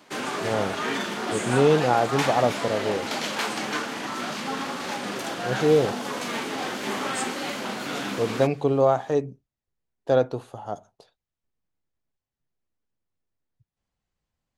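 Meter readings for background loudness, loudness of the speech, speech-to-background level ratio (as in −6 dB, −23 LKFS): −29.0 LKFS, −24.0 LKFS, 5.0 dB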